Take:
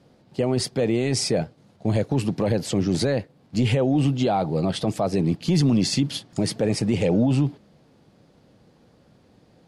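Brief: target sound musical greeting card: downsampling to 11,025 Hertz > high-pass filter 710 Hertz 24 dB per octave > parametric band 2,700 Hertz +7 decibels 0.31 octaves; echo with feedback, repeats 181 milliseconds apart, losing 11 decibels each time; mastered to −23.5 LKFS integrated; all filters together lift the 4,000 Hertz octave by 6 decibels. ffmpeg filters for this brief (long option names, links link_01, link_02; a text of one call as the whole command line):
ffmpeg -i in.wav -af "equalizer=frequency=4000:width_type=o:gain=6.5,aecho=1:1:181|362|543:0.282|0.0789|0.0221,aresample=11025,aresample=44100,highpass=frequency=710:width=0.5412,highpass=frequency=710:width=1.3066,equalizer=frequency=2700:width_type=o:width=0.31:gain=7,volume=4.5dB" out.wav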